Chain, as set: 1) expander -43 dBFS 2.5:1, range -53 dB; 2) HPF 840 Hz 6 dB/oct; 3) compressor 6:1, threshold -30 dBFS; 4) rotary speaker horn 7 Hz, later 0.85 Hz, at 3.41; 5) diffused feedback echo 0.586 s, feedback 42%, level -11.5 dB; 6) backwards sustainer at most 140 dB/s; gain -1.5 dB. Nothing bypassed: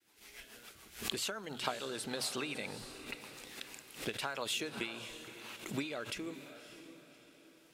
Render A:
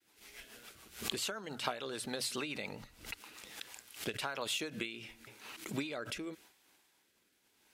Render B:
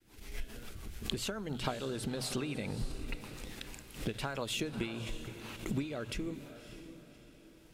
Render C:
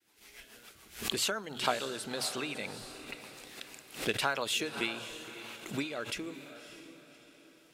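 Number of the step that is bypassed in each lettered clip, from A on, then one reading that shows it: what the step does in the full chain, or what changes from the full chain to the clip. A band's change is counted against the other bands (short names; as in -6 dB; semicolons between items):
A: 5, momentary loudness spread change -1 LU; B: 2, 125 Hz band +12.0 dB; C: 3, mean gain reduction 2.0 dB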